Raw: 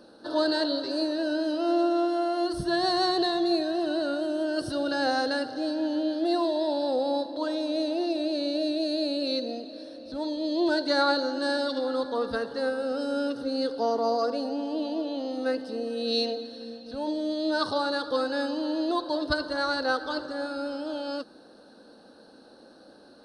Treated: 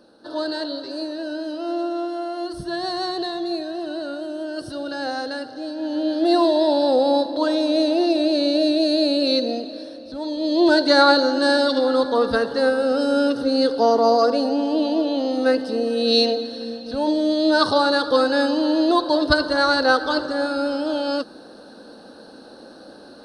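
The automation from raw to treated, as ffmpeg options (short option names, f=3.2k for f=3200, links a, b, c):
-af "volume=16.5dB,afade=t=in:st=5.75:d=0.64:silence=0.316228,afade=t=out:st=9.58:d=0.62:silence=0.446684,afade=t=in:st=10.2:d=0.5:silence=0.421697"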